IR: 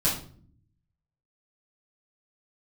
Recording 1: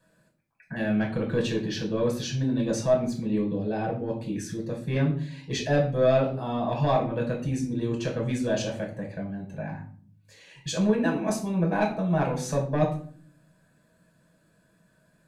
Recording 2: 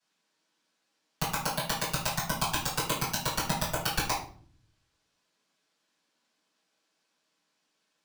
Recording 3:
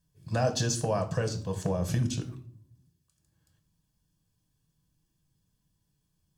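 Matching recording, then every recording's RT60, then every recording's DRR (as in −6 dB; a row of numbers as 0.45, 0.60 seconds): 2; non-exponential decay, non-exponential decay, non-exponential decay; −1.0, −9.5, 6.0 decibels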